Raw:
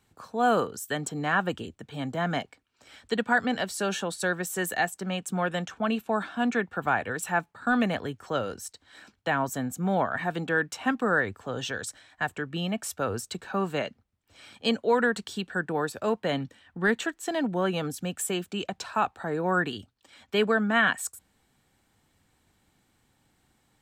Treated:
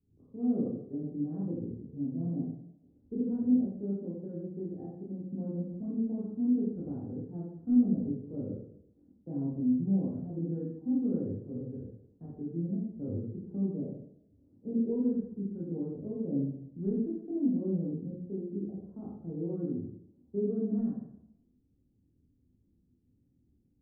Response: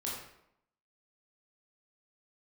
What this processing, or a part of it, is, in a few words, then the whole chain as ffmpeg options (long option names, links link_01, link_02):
next room: -filter_complex "[0:a]lowpass=frequency=340:width=0.5412,lowpass=frequency=340:width=1.3066[link_01];[1:a]atrim=start_sample=2205[link_02];[link_01][link_02]afir=irnorm=-1:irlink=0,volume=-2.5dB"